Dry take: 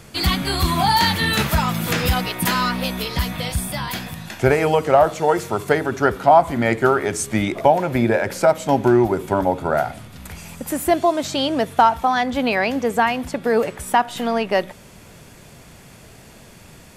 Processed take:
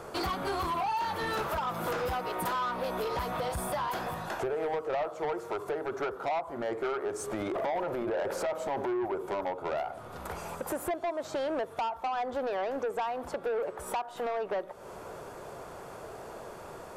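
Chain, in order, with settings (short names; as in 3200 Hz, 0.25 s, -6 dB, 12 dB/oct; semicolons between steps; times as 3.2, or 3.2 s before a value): band shelf 710 Hz +15.5 dB 2.4 oct; 7.36–9.05 transient shaper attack -7 dB, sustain +7 dB; compressor 5:1, threshold -18 dBFS, peak gain reduction 22 dB; soft clip -18.5 dBFS, distortion -10 dB; gain -8.5 dB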